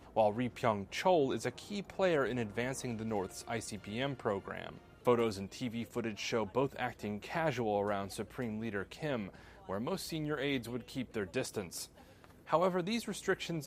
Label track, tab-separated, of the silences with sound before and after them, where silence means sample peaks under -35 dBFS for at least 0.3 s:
4.690000	5.070000	silence
9.280000	9.690000	silence
11.830000	12.500000	silence